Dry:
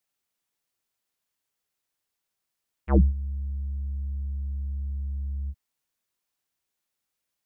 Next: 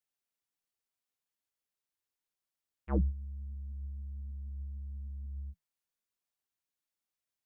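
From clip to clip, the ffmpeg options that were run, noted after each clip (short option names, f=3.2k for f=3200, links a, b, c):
-af "flanger=delay=1.1:depth=9.8:regen=73:speed=1.3:shape=triangular,volume=-5dB"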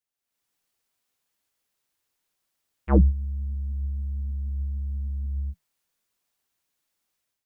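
-af "dynaudnorm=f=130:g=5:m=12dB"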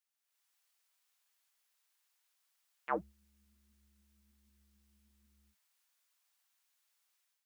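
-af "highpass=900"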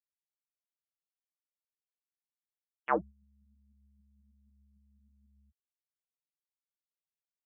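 -af "afftfilt=real='re*gte(hypot(re,im),0.00141)':imag='im*gte(hypot(re,im),0.00141)':win_size=1024:overlap=0.75,volume=6dB"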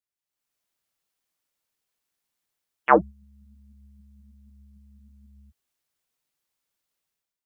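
-af "dynaudnorm=f=110:g=7:m=12.5dB,volume=1.5dB"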